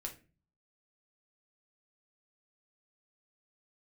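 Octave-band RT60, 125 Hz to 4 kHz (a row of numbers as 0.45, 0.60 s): 0.70, 0.60, 0.40, 0.30, 0.35, 0.25 s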